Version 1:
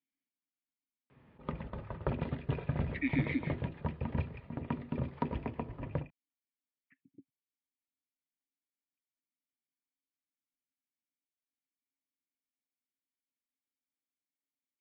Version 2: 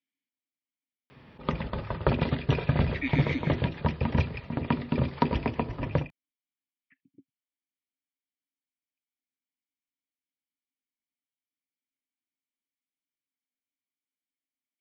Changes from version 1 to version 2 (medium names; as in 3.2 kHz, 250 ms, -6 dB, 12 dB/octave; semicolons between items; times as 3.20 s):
background +8.5 dB; master: remove distance through air 390 m